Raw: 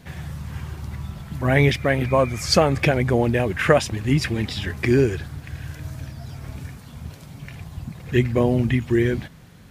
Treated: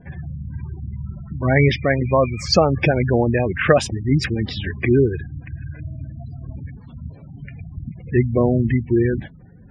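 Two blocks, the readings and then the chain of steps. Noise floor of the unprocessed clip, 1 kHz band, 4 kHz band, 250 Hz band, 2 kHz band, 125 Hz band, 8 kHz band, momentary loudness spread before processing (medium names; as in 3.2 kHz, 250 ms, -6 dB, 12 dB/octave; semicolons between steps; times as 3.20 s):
-45 dBFS, +1.0 dB, +0.5 dB, +2.0 dB, +0.5 dB, +2.0 dB, -2.5 dB, 18 LU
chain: spectral gate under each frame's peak -20 dB strong; level-controlled noise filter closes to 2.4 kHz, open at -15.5 dBFS; trim +2 dB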